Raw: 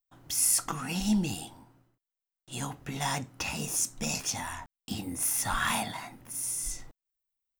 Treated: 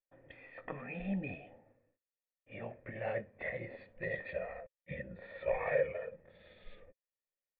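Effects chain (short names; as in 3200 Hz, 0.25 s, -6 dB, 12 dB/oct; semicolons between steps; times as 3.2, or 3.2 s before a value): gliding pitch shift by -9.5 st starting unshifted; vocal tract filter e; gain +9.5 dB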